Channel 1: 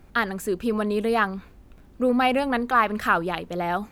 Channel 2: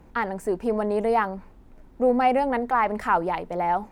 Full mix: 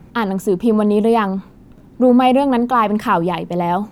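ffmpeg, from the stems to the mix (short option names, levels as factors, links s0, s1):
-filter_complex "[0:a]volume=1.26[s0];[1:a]highpass=f=96:w=0.5412,highpass=f=96:w=1.3066,bass=f=250:g=13,treble=f=4000:g=0,volume=1.41[s1];[s0][s1]amix=inputs=2:normalize=0"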